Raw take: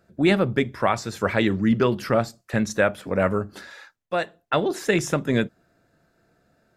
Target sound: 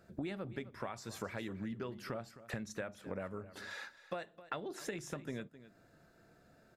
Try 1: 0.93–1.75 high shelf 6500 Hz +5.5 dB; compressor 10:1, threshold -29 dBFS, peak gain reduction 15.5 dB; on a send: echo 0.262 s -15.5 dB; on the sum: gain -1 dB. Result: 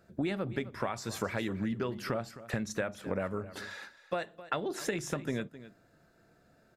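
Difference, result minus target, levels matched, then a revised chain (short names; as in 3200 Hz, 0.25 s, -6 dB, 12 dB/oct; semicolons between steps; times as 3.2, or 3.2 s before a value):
compressor: peak gain reduction -8 dB
0.93–1.75 high shelf 6500 Hz +5.5 dB; compressor 10:1, threshold -38 dBFS, peak gain reduction 23.5 dB; on a send: echo 0.262 s -15.5 dB; on the sum: gain -1 dB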